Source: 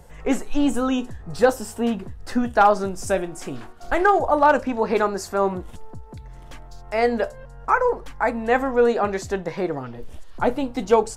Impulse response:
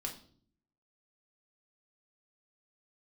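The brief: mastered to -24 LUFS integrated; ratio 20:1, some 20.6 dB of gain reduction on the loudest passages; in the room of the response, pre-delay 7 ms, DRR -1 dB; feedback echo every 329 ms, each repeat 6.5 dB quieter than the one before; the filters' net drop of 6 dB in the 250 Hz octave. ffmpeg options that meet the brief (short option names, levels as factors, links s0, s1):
-filter_complex "[0:a]equalizer=f=250:t=o:g=-7,acompressor=threshold=0.0251:ratio=20,aecho=1:1:329|658|987|1316|1645|1974:0.473|0.222|0.105|0.0491|0.0231|0.0109,asplit=2[s0][s1];[1:a]atrim=start_sample=2205,adelay=7[s2];[s1][s2]afir=irnorm=-1:irlink=0,volume=1.19[s3];[s0][s3]amix=inputs=2:normalize=0,volume=3.16"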